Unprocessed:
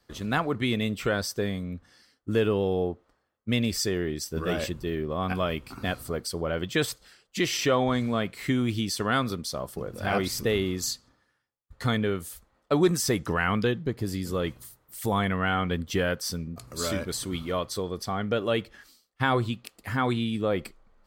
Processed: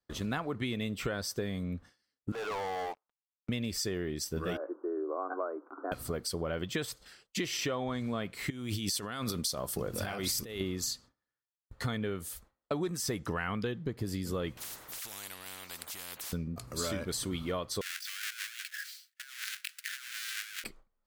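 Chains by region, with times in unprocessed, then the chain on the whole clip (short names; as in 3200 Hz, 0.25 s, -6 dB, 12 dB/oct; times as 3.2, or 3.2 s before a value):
2.32–3.49 ladder band-pass 1000 Hz, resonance 50% + sample leveller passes 5
4.57–5.92 Chebyshev band-pass 290–1500 Hz, order 5 + air absorption 250 m
8.5–10.61 negative-ratio compressor -33 dBFS + high shelf 3500 Hz +9 dB
14.57–16.33 tilt +2.5 dB/oct + compressor 1.5:1, threshold -39 dBFS + spectral compressor 10:1
17.81–20.64 half-waves squared off + Chebyshev high-pass 1500 Hz, order 5 + negative-ratio compressor -42 dBFS
whole clip: gate with hold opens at -44 dBFS; compressor 6:1, threshold -31 dBFS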